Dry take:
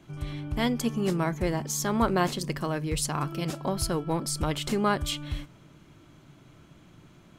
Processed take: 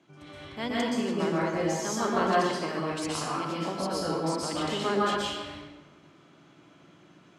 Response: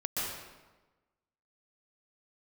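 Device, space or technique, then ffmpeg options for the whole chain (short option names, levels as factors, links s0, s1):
supermarket ceiling speaker: -filter_complex "[0:a]highpass=230,lowpass=6800[s0];[1:a]atrim=start_sample=2205[s1];[s0][s1]afir=irnorm=-1:irlink=0,volume=0.596"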